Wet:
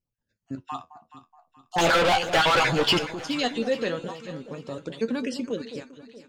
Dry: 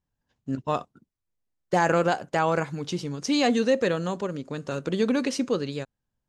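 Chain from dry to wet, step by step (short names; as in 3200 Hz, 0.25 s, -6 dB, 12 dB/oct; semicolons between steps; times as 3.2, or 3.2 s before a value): random spectral dropouts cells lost 31%; 1.78–2.99 overdrive pedal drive 35 dB, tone 3400 Hz, clips at -10 dBFS; dynamic EQ 3300 Hz, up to +7 dB, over -37 dBFS, Q 1.1; flange 0.38 Hz, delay 7.7 ms, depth 6.9 ms, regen +59%; echo with dull and thin repeats by turns 0.212 s, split 890 Hz, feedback 64%, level -10 dB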